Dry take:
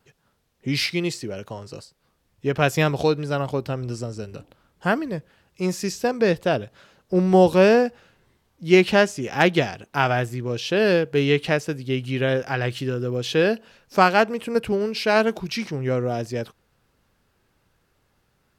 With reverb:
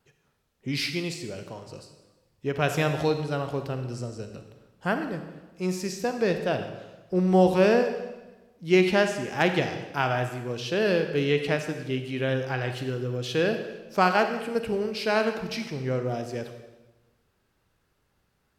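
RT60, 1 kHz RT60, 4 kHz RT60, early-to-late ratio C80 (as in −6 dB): 1.1 s, 1.1 s, 1.0 s, 9.5 dB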